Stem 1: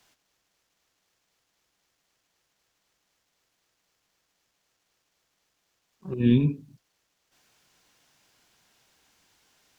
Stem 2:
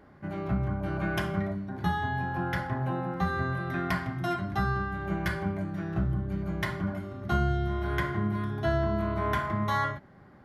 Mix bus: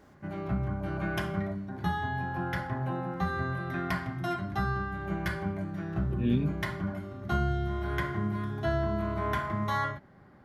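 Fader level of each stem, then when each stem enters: -7.5, -2.0 dB; 0.00, 0.00 s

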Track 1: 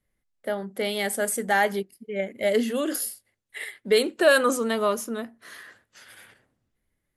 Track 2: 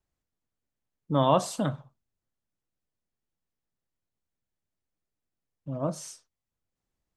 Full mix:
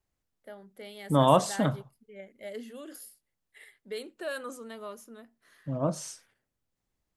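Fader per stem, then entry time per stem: -17.5, +1.5 dB; 0.00, 0.00 s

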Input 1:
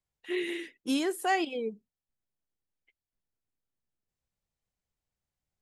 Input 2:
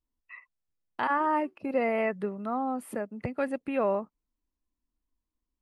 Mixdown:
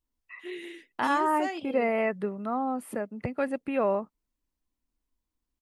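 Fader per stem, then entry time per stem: -7.0, +1.0 dB; 0.15, 0.00 s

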